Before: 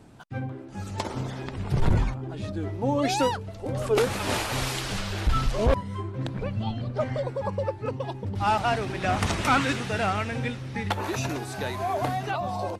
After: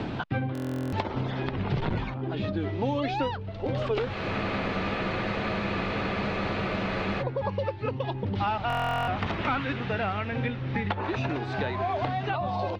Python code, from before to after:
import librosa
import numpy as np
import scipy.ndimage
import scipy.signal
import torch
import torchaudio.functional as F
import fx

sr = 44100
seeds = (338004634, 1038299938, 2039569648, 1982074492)

y = scipy.signal.sosfilt(scipy.signal.butter(4, 3700.0, 'lowpass', fs=sr, output='sos'), x)
y = fx.buffer_glitch(y, sr, at_s=(0.53, 8.68), block=1024, repeats=16)
y = fx.spec_freeze(y, sr, seeds[0], at_s=4.15, hold_s=3.05)
y = fx.band_squash(y, sr, depth_pct=100)
y = y * 10.0 ** (-2.0 / 20.0)